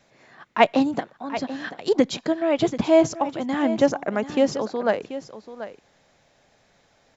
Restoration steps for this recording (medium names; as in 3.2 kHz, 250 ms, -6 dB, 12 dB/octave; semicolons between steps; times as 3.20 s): inverse comb 735 ms -13 dB